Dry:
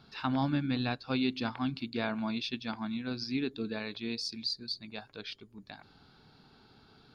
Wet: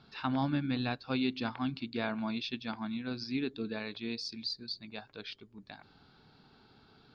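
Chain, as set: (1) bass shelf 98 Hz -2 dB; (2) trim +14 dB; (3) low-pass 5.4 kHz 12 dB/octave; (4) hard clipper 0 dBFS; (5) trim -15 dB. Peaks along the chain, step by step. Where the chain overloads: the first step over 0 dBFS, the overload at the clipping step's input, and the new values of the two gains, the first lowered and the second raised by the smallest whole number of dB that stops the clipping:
-18.0 dBFS, -4.0 dBFS, -4.0 dBFS, -4.0 dBFS, -19.0 dBFS; nothing clips

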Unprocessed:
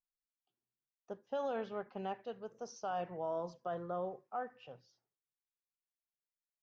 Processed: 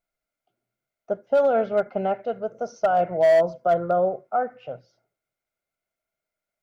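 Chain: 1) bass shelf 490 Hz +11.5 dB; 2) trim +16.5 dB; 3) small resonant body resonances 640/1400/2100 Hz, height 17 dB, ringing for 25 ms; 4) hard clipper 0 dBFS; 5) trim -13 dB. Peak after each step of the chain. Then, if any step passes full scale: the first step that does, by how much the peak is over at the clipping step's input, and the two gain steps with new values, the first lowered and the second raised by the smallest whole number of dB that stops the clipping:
-23.0 dBFS, -6.5 dBFS, +4.5 dBFS, 0.0 dBFS, -13.0 dBFS; step 3, 4.5 dB; step 2 +11.5 dB, step 5 -8 dB

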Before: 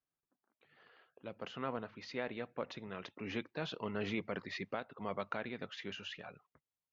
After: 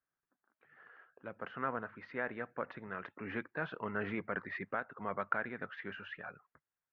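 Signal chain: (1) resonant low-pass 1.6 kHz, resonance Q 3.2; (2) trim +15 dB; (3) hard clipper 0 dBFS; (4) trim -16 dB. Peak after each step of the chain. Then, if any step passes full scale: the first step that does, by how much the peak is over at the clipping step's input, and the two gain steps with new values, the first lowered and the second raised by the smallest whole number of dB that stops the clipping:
-16.5 dBFS, -1.5 dBFS, -1.5 dBFS, -17.5 dBFS; nothing clips

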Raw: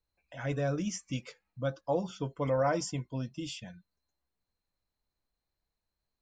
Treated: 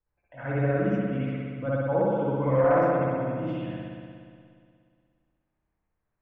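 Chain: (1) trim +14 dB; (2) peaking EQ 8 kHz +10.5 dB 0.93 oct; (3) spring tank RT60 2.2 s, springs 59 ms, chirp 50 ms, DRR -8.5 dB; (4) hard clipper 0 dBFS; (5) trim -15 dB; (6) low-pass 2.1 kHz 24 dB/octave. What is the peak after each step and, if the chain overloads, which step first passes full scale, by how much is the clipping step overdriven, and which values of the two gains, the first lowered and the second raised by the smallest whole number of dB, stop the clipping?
-4.5 dBFS, -4.0 dBFS, +5.0 dBFS, 0.0 dBFS, -15.0 dBFS, -14.0 dBFS; step 3, 5.0 dB; step 1 +9 dB, step 5 -10 dB

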